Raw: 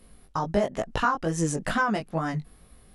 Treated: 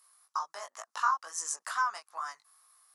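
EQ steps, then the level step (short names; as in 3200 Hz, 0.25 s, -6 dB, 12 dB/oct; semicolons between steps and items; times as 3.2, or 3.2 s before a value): ladder high-pass 1000 Hz, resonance 65%; resonant high shelf 4100 Hz +9.5 dB, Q 1.5; 0.0 dB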